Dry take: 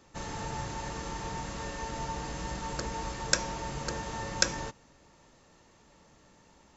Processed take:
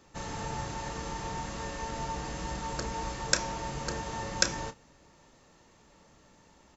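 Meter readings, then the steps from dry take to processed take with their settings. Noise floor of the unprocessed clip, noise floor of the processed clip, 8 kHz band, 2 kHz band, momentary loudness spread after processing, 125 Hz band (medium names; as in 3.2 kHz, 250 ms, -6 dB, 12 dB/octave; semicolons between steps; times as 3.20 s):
-61 dBFS, -61 dBFS, no reading, 0.0 dB, 8 LU, 0.0 dB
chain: doubling 31 ms -12 dB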